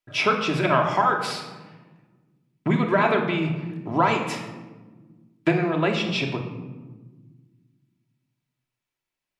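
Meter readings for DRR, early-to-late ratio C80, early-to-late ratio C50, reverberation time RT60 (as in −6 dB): 1.0 dB, 8.5 dB, 6.5 dB, 1.3 s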